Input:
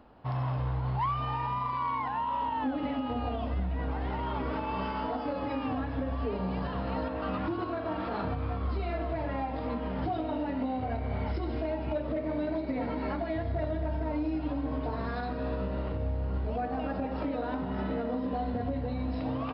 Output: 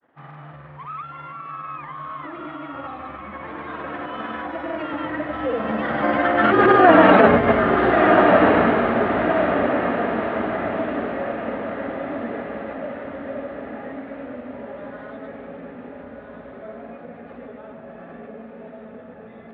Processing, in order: Doppler pass-by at 7.02 s, 42 m/s, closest 11 m; granulator, pitch spread up and down by 0 st; cabinet simulation 230–2900 Hz, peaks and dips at 340 Hz -4 dB, 960 Hz -6 dB, 1.8 kHz +6 dB; echo that smears into a reverb 1332 ms, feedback 47%, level -4 dB; loudness maximiser +28.5 dB; trim -1 dB

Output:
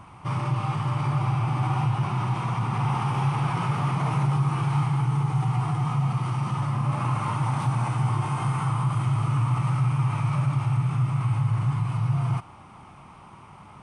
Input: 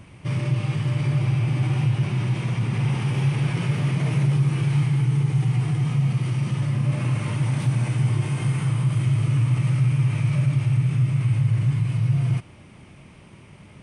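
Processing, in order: high-order bell 1 kHz +14.5 dB 1.1 oct; trim -3.5 dB

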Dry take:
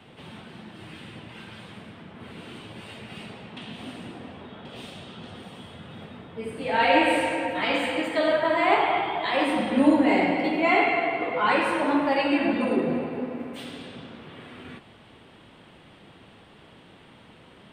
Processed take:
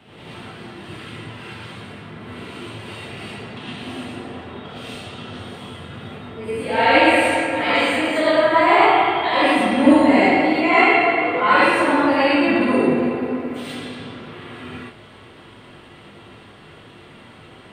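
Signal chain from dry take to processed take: gated-style reverb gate 140 ms rising, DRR -7.5 dB

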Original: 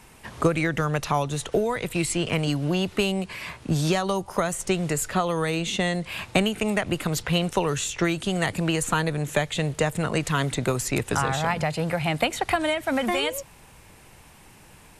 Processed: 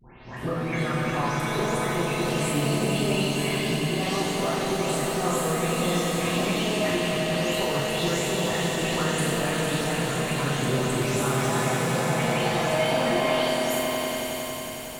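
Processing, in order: delay that grows with frequency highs late, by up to 367 ms; compression 2.5:1, threshold -34 dBFS, peak gain reduction 12 dB; echo with a slow build-up 91 ms, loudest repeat 5, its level -8 dB; pitch-shifted reverb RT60 1 s, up +7 st, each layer -8 dB, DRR -4 dB; trim -1 dB

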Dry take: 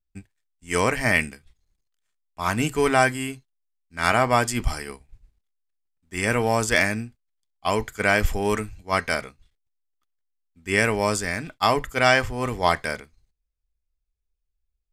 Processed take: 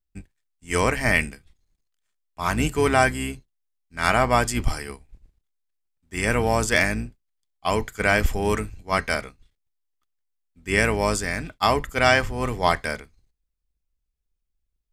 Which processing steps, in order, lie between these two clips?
octave divider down 2 oct, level -3 dB

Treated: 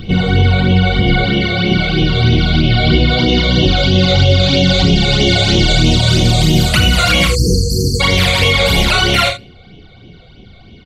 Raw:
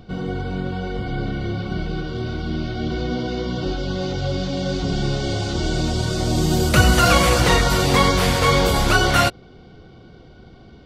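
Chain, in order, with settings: high-order bell 2.9 kHz +9 dB 1.3 oct; gain riding within 5 dB 0.5 s; on a send at -23.5 dB: reverberation RT60 0.50 s, pre-delay 3 ms; on the sum: phase shifter stages 12, 3.1 Hz, lowest notch 280–1600 Hz; 1.24–2.02 s: bass shelf 120 Hz -10.5 dB; 2.62–3.18 s: band-stop 6.1 kHz, Q 5.3; 7.27–8.01 s: spectral selection erased 510–4200 Hz; early reflections 34 ms -9.5 dB, 45 ms -10.5 dB, 76 ms -12.5 dB; loudness maximiser +10.5 dB; trim -1 dB

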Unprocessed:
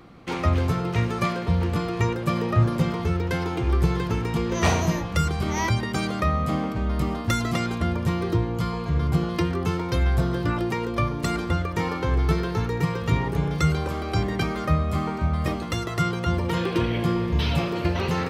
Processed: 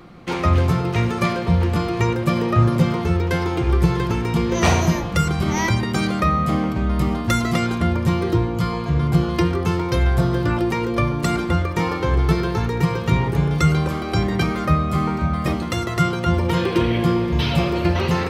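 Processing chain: simulated room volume 3500 m³, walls furnished, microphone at 0.91 m; trim +4 dB

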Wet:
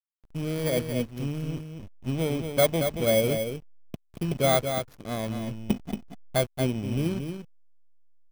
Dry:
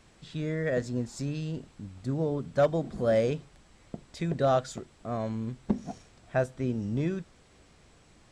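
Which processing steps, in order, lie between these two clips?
bit-reversed sample order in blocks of 16 samples; hysteresis with a dead band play -32 dBFS; delay 229 ms -7 dB; trim +2.5 dB

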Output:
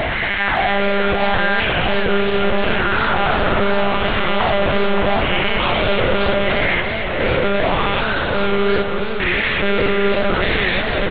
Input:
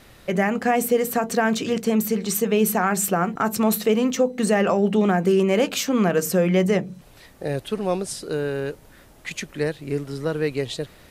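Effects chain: spectrogram pixelated in time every 400 ms; peak limiter -19.5 dBFS, peak gain reduction 8 dB; LFO high-pass sine 0.78 Hz 380–1600 Hz; fuzz box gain 48 dB, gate -51 dBFS; feedback delay 223 ms, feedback 56%, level -7.5 dB; monotone LPC vocoder at 8 kHz 200 Hz; modulated delay 573 ms, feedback 57%, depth 195 cents, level -8 dB; trim -3.5 dB

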